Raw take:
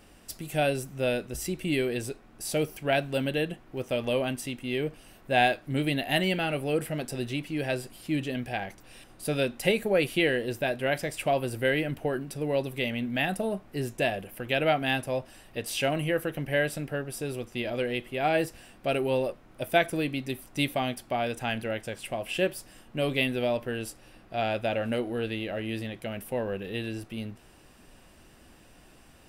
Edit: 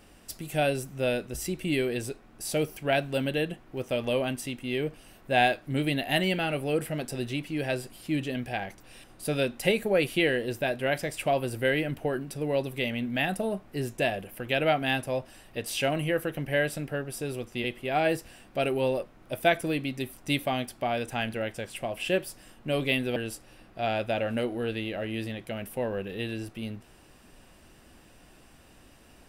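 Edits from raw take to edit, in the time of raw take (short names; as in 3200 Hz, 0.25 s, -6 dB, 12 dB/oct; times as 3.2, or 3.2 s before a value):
17.64–17.93 cut
23.45–23.71 cut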